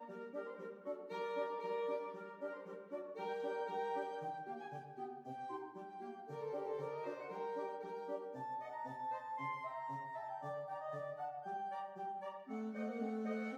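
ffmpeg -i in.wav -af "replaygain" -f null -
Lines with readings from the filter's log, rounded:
track_gain = +24.9 dB
track_peak = 0.025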